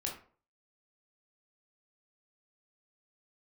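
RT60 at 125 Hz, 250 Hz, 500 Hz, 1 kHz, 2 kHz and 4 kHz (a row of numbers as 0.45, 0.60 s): 0.45, 0.45, 0.45, 0.40, 0.35, 0.25 s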